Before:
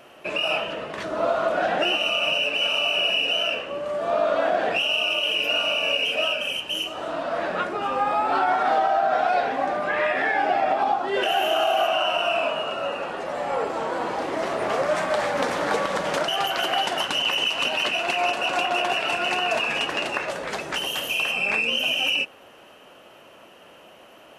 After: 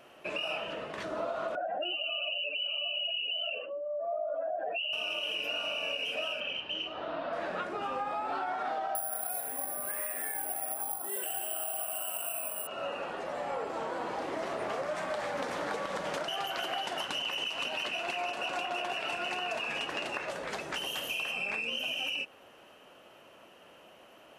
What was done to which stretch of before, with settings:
1.55–4.93 spectral contrast raised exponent 2.2
6.4–7.33 LPF 4200 Hz 24 dB/oct
8.95–12.67 careless resampling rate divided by 4×, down filtered, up zero stuff
whole clip: compressor, threshold -24 dBFS; gain -7 dB

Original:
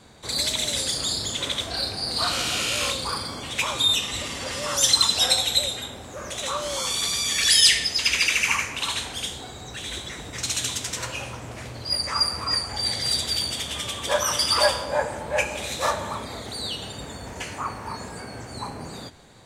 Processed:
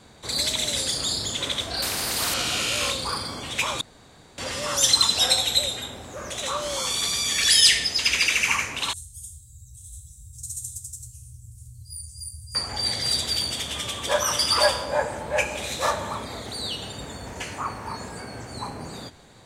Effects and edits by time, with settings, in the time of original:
1.82–2.34 spectral compressor 4:1
3.81–4.38 room tone
8.93–12.55 elliptic band-stop 100–8300 Hz, stop band 80 dB

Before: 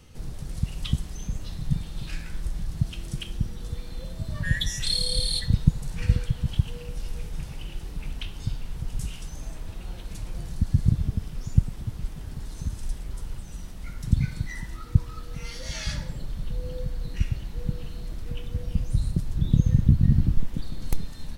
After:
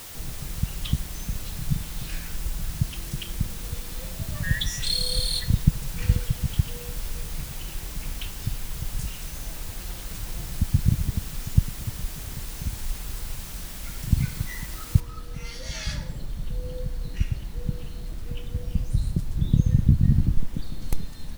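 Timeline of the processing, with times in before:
15 noise floor step -41 dB -57 dB

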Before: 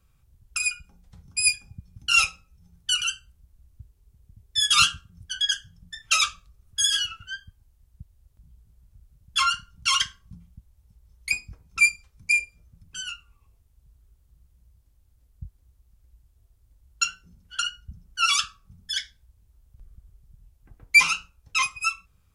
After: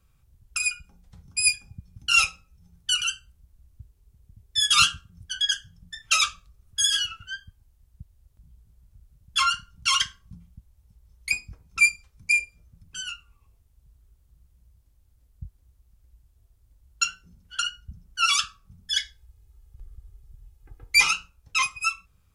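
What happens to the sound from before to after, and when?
18.91–21.11 comb 2.4 ms, depth 82%

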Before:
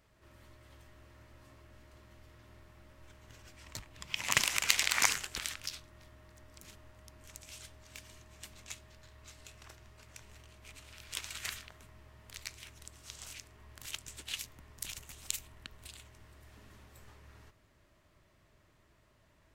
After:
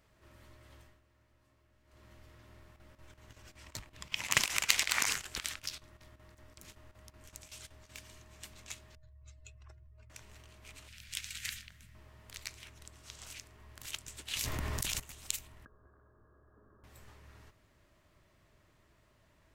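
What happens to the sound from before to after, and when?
0.79–2.06 dip -12.5 dB, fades 0.22 s
2.61–7.91 chopper 5.3 Hz, depth 65%, duty 80%
8.95–10.1 spectral contrast raised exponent 2.2
10.88–11.95 band shelf 610 Hz -15.5 dB 2.3 oct
12.58–13.3 high shelf 4700 Hz -4.5 dB
14.32–15 fast leveller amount 100%
15.65–16.84 rippled Chebyshev low-pass 1700 Hz, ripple 9 dB

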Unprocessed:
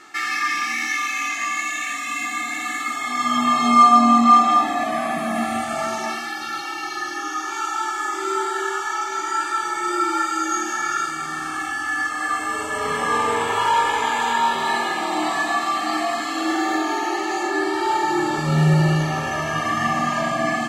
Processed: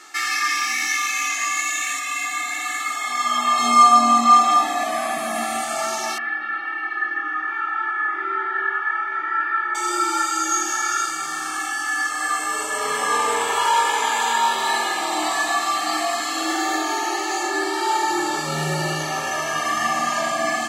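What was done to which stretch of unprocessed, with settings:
1.99–3.58 tone controls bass -12 dB, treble -4 dB
6.18–9.75 speaker cabinet 130–2200 Hz, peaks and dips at 410 Hz -9 dB, 870 Hz -8 dB, 1800 Hz +8 dB
whole clip: tone controls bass -14 dB, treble +8 dB

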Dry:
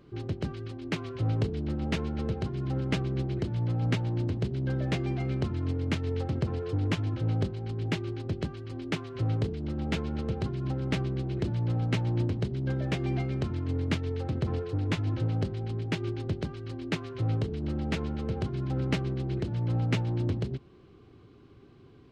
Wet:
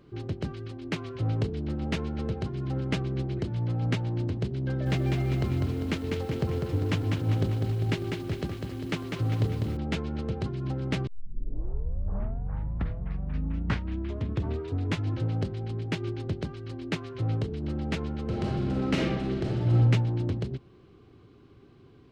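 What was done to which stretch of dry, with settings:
4.66–9.77 lo-fi delay 0.199 s, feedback 55%, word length 9-bit, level -4 dB
11.07 tape start 3.93 s
18.23–19.75 reverb throw, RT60 1.2 s, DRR -3 dB

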